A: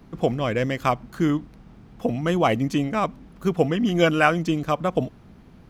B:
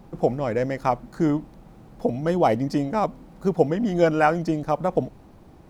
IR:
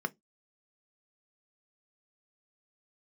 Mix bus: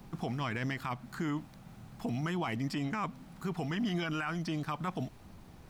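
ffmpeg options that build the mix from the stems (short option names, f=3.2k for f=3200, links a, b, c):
-filter_complex "[0:a]alimiter=limit=-11dB:level=0:latency=1:release=457,volume=-9dB[a];[1:a]equalizer=f=370:w=0.39:g=-13,acrossover=split=86|450|1300|5100[b][c][d][e][f];[b]acompressor=threshold=-58dB:ratio=4[g];[c]acompressor=threshold=-47dB:ratio=4[h];[d]acompressor=threshold=-37dB:ratio=4[i];[e]acompressor=threshold=-41dB:ratio=4[j];[f]acompressor=threshold=-59dB:ratio=4[k];[g][h][i][j][k]amix=inputs=5:normalize=0,volume=2.5dB[l];[a][l]amix=inputs=2:normalize=0,alimiter=level_in=2dB:limit=-24dB:level=0:latency=1:release=18,volume=-2dB"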